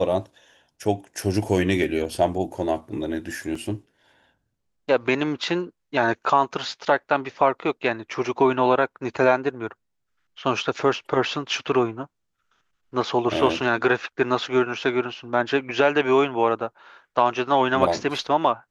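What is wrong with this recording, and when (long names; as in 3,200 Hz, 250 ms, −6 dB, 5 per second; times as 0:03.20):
0:03.55: drop-out 4.3 ms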